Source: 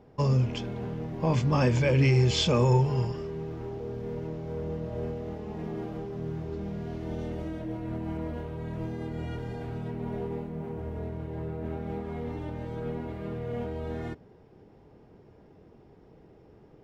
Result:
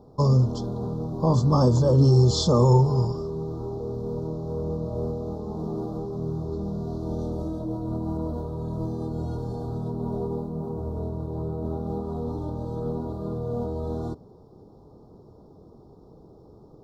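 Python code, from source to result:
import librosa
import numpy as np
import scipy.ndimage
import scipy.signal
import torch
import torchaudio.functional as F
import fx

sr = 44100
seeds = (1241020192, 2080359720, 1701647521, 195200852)

y = scipy.signal.sosfilt(scipy.signal.cheby1(3, 1.0, [1200.0, 4000.0], 'bandstop', fs=sr, output='sos'), x)
y = y * librosa.db_to_amplitude(5.0)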